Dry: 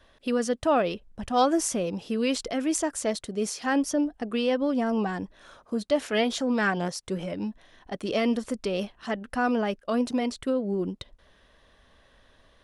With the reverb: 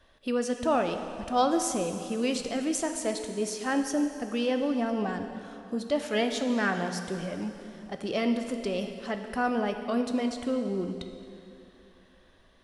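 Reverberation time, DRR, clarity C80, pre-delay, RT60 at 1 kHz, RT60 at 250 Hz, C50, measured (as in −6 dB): 2.8 s, 6.0 dB, 8.0 dB, 7 ms, 2.8 s, 3.0 s, 7.0 dB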